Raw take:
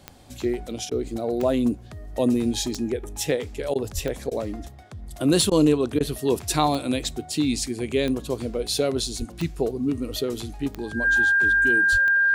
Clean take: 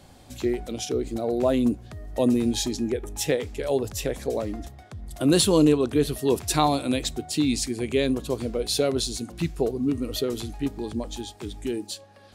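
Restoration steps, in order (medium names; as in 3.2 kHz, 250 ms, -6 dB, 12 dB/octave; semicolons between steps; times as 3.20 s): de-click; band-stop 1.6 kHz, Q 30; de-plosive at 3.94/9.18/11.91 s; interpolate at 0.90/3.74/4.30/5.50/5.99 s, 13 ms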